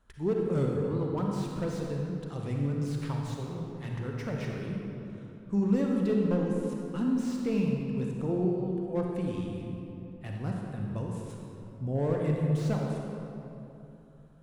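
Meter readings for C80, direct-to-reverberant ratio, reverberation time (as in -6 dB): 1.5 dB, -0.5 dB, 3.0 s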